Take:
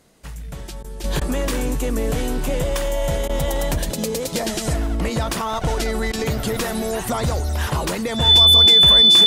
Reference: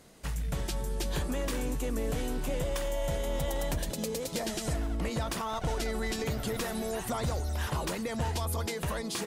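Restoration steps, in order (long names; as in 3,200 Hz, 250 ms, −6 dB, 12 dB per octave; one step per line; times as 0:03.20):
notch filter 3,500 Hz, Q 30
repair the gap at 0:00.83/0:01.20/0:03.28/0:06.12, 12 ms
level 0 dB, from 0:01.04 −10 dB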